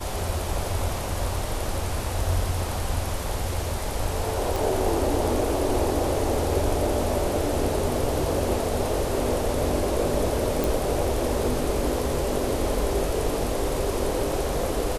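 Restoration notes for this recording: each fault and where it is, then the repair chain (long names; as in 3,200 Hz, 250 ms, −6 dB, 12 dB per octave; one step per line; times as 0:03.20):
0:04.56: click
0:10.64: click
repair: click removal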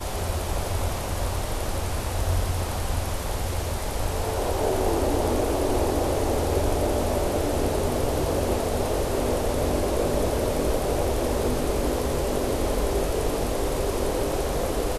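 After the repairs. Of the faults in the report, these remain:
none of them is left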